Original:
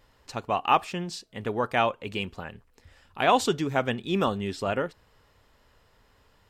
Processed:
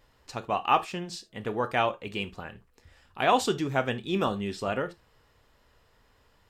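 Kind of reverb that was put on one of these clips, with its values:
reverb whose tail is shaped and stops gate 100 ms falling, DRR 10 dB
level −2 dB

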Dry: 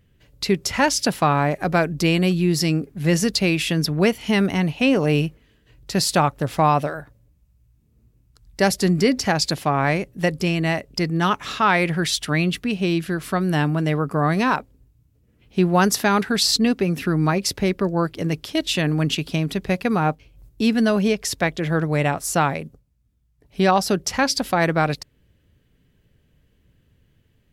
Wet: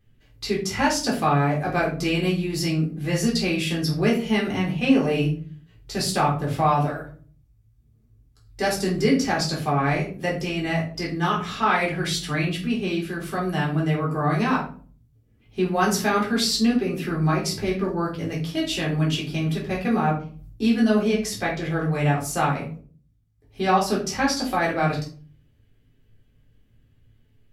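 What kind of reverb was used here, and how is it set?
rectangular room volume 290 cubic metres, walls furnished, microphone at 3.8 metres
level −10 dB

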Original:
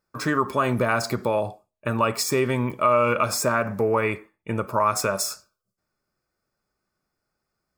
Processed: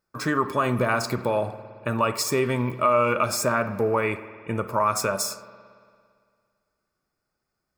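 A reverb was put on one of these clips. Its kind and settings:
spring reverb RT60 2.1 s, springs 56 ms, chirp 25 ms, DRR 13.5 dB
level −1 dB

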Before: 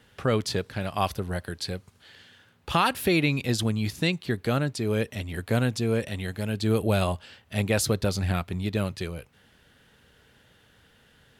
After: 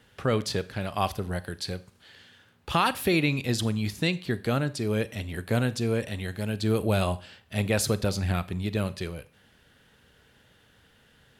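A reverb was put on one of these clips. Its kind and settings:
four-comb reverb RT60 0.41 s, combs from 30 ms, DRR 16 dB
level −1 dB

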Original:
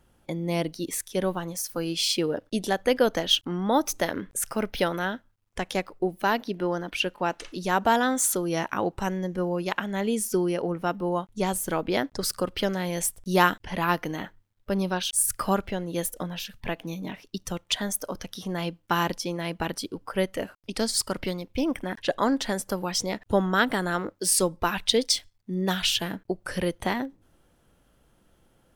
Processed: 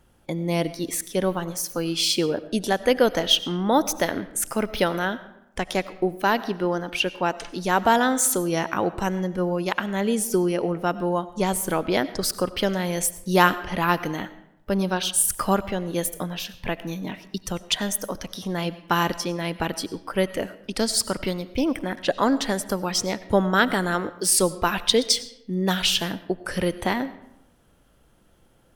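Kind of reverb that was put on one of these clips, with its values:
comb and all-pass reverb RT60 0.83 s, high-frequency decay 0.65×, pre-delay 55 ms, DRR 15.5 dB
level +3 dB

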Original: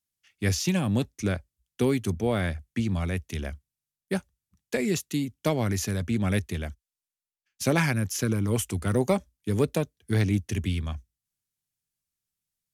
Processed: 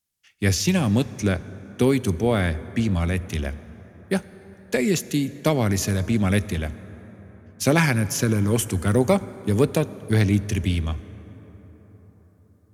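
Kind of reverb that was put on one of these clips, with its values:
dense smooth reverb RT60 5 s, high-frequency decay 0.4×, DRR 15.5 dB
level +5 dB

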